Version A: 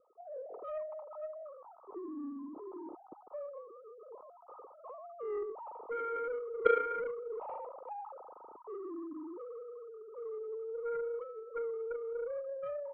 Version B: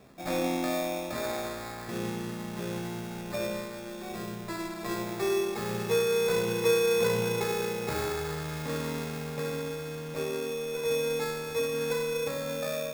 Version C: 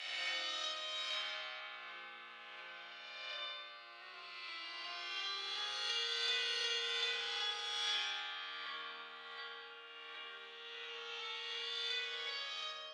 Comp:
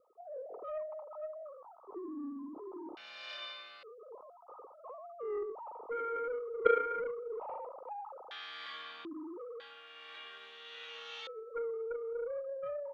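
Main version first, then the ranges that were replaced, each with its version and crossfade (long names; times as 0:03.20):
A
0:02.97–0:03.83: punch in from C
0:08.31–0:09.05: punch in from C
0:09.60–0:11.27: punch in from C
not used: B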